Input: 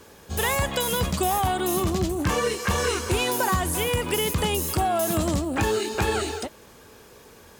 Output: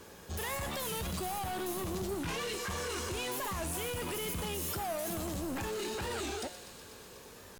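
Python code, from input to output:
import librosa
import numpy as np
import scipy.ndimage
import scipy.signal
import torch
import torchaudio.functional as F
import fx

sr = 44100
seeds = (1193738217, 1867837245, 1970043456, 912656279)

p1 = fx.peak_eq(x, sr, hz=3200.0, db=9.0, octaves=1.3, at=(2.12, 2.53))
p2 = fx.over_compress(p1, sr, threshold_db=-28.0, ratio=-1.0)
p3 = p1 + (p2 * 10.0 ** (3.0 / 20.0))
p4 = 10.0 ** (-21.0 / 20.0) * np.tanh(p3 / 10.0 ** (-21.0 / 20.0))
p5 = fx.comb_fb(p4, sr, f0_hz=180.0, decay_s=1.2, harmonics='all', damping=0.0, mix_pct=70)
p6 = p5 + fx.echo_wet_highpass(p5, sr, ms=123, feedback_pct=82, hz=3200.0, wet_db=-10.5, dry=0)
p7 = fx.record_warp(p6, sr, rpm=45.0, depth_cents=160.0)
y = p7 * 10.0 ** (-3.0 / 20.0)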